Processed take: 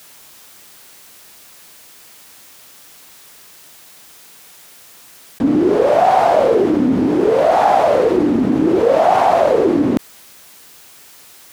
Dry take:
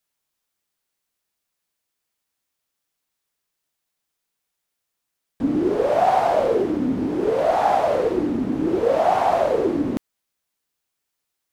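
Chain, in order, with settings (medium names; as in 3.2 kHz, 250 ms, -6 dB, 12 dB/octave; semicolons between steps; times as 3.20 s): high-pass 96 Hz 6 dB/octave; level flattener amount 50%; trim +4.5 dB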